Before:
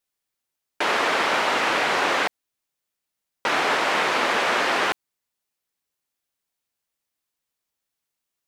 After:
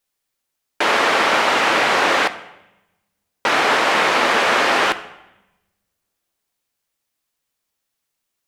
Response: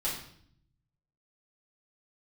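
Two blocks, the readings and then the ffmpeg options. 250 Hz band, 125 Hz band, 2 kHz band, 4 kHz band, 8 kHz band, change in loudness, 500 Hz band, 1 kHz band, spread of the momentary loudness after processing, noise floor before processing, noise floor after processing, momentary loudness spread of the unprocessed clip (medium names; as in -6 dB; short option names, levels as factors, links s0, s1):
+5.5 dB, +5.0 dB, +5.5 dB, +5.5 dB, +5.5 dB, +5.5 dB, +5.5 dB, +5.5 dB, 6 LU, -83 dBFS, -78 dBFS, 6 LU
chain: -filter_complex "[0:a]asplit=2[s0][s1];[1:a]atrim=start_sample=2205,asetrate=27783,aresample=44100[s2];[s1][s2]afir=irnorm=-1:irlink=0,volume=0.1[s3];[s0][s3]amix=inputs=2:normalize=0,volume=1.68"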